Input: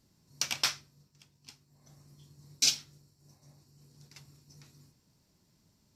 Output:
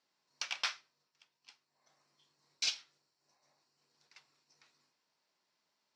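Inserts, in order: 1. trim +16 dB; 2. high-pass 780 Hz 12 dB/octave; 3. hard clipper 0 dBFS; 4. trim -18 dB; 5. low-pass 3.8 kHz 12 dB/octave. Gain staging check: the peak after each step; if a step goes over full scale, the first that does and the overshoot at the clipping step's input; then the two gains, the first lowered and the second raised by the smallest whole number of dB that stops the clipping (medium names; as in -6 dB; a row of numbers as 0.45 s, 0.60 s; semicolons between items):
+4.5 dBFS, +4.5 dBFS, 0.0 dBFS, -18.0 dBFS, -19.5 dBFS; step 1, 4.5 dB; step 1 +11 dB, step 4 -13 dB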